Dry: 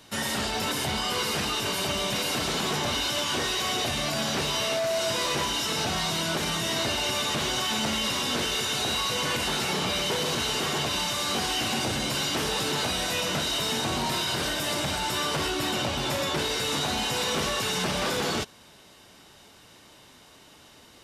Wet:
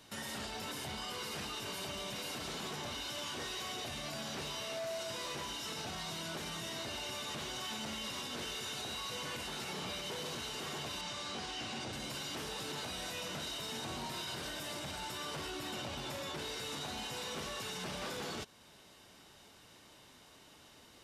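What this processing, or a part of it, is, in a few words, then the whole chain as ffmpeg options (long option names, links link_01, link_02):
stacked limiters: -filter_complex "[0:a]alimiter=limit=-23.5dB:level=0:latency=1:release=402,alimiter=level_in=4dB:limit=-24dB:level=0:latency=1:release=111,volume=-4dB,asettb=1/sr,asplit=3[link_01][link_02][link_03];[link_01]atrim=end=11.014[link_04];[link_02]atrim=start=11.01:end=11.93,asetpts=PTS-STARTPTS,afade=type=in:duration=0.004:curve=qsin,afade=type=out:start_time=0.916:duration=0.004:curve=qsin,lowpass=7000[link_05];[link_03]atrim=start=11.926[link_06];[link_04][link_05]acrossfade=duration=0.004:curve1=hsin:curve2=qsin[link_07];[link_07][link_06]acrossfade=duration=0.004:curve1=qsin:curve2=hsin,volume=-6.5dB"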